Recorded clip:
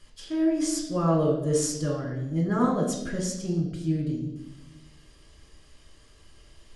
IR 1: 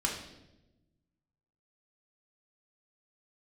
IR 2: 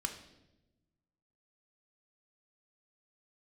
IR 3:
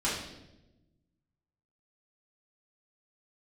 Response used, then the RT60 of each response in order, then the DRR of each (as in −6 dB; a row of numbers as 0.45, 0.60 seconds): 1; 1.0, 1.0, 1.0 seconds; −2.0, 4.0, −9.0 decibels